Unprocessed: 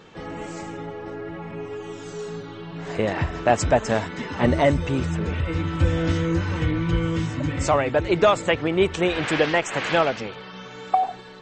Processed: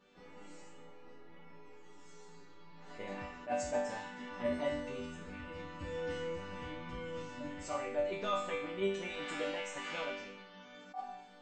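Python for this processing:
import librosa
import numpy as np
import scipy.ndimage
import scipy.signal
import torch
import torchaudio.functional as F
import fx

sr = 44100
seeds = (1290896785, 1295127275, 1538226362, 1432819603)

y = fx.resonator_bank(x, sr, root=55, chord='major', decay_s=0.65)
y = fx.attack_slew(y, sr, db_per_s=250.0)
y = F.gain(torch.from_numpy(y), 4.0).numpy()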